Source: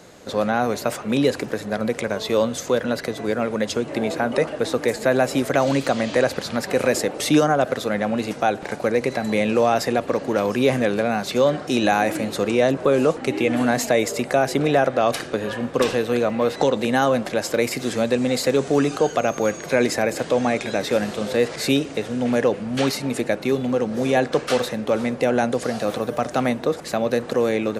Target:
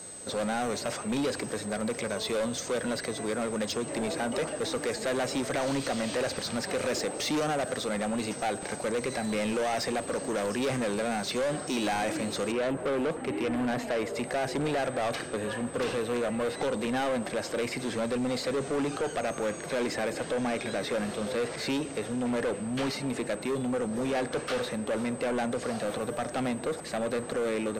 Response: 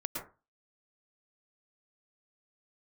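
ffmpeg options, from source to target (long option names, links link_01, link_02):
-filter_complex "[0:a]acrossover=split=6000[link_01][link_02];[link_02]acompressor=threshold=-48dB:ratio=4:attack=1:release=60[link_03];[link_01][link_03]amix=inputs=2:normalize=0,aeval=exprs='val(0)+0.00891*sin(2*PI*8200*n/s)':channel_layout=same,asetnsamples=nb_out_samples=441:pad=0,asendcmd='12.52 equalizer g -12;14.15 equalizer g -2',equalizer=frequency=5800:width=1:gain=5.5,asoftclip=type=tanh:threshold=-21.5dB,volume=-4dB"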